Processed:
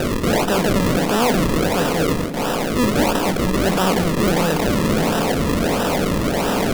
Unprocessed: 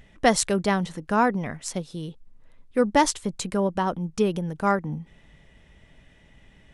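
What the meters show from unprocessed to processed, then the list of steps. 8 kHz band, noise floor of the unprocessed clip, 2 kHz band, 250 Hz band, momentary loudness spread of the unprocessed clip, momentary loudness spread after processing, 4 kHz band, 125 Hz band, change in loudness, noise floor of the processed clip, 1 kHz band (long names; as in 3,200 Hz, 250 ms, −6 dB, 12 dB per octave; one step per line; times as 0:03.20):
+4.5 dB, −56 dBFS, +8.0 dB, +8.5 dB, 13 LU, 2 LU, +10.5 dB, +10.5 dB, +6.5 dB, −22 dBFS, +4.5 dB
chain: compressor on every frequency bin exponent 0.2
noise gate with hold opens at −12 dBFS
tilt shelving filter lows +5 dB
mains-hum notches 50/100/150/200/250/300/350/400 Hz
transient designer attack −7 dB, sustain +3 dB
sample-and-hold swept by an LFO 40×, swing 100% 1.5 Hz
soft clipping −12.5 dBFS, distortion −12 dB
echo through a band-pass that steps 197 ms, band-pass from 220 Hz, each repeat 1.4 octaves, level −8.5 dB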